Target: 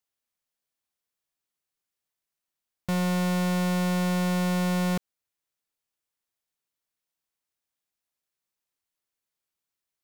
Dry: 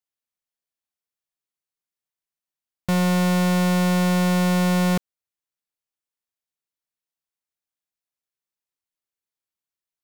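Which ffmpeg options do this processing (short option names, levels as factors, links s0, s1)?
-af "alimiter=level_in=1.68:limit=0.0631:level=0:latency=1,volume=0.596,volume=1.5"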